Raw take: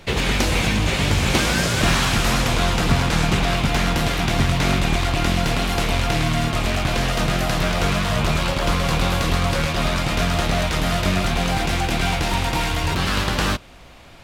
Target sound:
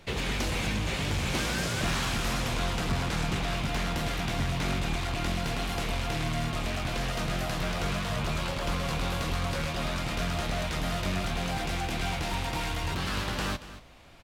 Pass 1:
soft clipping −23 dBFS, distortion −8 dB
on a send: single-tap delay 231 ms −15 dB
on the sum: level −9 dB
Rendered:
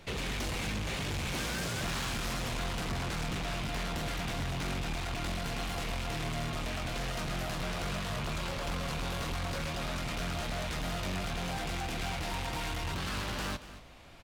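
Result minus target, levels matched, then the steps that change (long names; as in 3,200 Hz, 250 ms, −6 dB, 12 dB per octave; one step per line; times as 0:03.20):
soft clipping: distortion +10 dB
change: soft clipping −12.5 dBFS, distortion −19 dB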